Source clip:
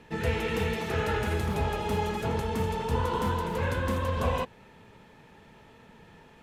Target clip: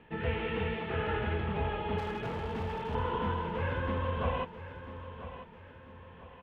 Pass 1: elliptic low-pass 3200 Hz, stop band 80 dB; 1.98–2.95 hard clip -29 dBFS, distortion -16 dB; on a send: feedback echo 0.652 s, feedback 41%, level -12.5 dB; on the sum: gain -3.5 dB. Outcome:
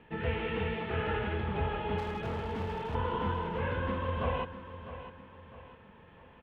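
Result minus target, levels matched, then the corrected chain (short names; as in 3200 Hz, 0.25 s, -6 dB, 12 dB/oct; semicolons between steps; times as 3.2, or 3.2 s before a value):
echo 0.339 s early
elliptic low-pass 3200 Hz, stop band 80 dB; 1.98–2.95 hard clip -29 dBFS, distortion -16 dB; on a send: feedback echo 0.991 s, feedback 41%, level -12.5 dB; on the sum: gain -3.5 dB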